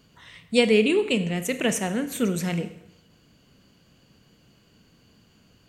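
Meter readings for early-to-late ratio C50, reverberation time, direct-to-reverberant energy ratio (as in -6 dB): 13.0 dB, 0.80 s, 10.5 dB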